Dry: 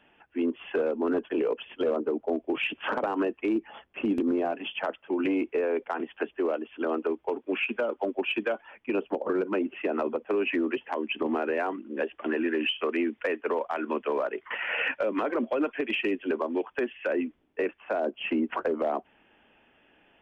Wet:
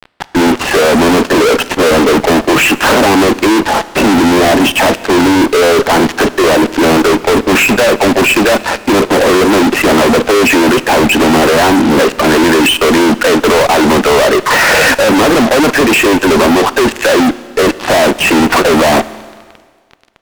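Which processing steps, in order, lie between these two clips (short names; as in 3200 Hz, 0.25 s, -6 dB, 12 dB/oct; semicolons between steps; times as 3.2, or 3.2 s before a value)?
LPF 1400 Hz 12 dB/oct; low shelf 200 Hz +9 dB; fuzz box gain 54 dB, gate -53 dBFS; Schroeder reverb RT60 1.7 s, combs from 25 ms, DRR 16 dB; gain +6 dB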